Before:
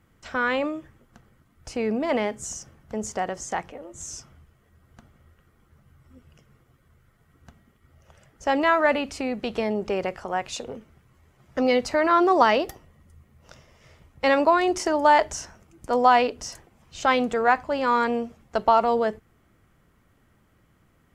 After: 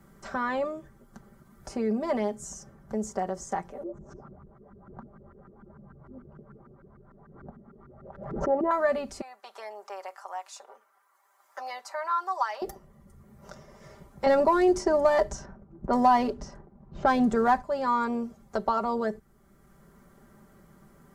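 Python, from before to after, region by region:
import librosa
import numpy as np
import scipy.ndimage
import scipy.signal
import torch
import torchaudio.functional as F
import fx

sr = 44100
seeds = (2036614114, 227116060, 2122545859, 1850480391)

y = fx.chain(x, sr, fx.filter_lfo_lowpass(shape='saw_up', hz=6.7, low_hz=260.0, high_hz=1500.0, q=2.6),
    fx.pre_swell(db_per_s=88.0), at=(3.83, 8.71))
y = fx.chain(y, sr, fx.ladder_highpass(hz=760.0, resonance_pct=35),
    fx.high_shelf(hz=9100.0, db=9.0), at=(9.21, 12.62))
y = fx.chain(y, sr, fx.low_shelf(hz=270.0, db=10.0),
    fx.leveller(passes=1),
    fx.env_lowpass(base_hz=910.0, full_db=-12.5), at=(14.26, 17.62))
y = fx.peak_eq(y, sr, hz=2700.0, db=-12.5, octaves=1.0)
y = y + 0.71 * np.pad(y, (int(5.1 * sr / 1000.0), 0))[:len(y)]
y = fx.band_squash(y, sr, depth_pct=40)
y = y * librosa.db_to_amplitude(-5.0)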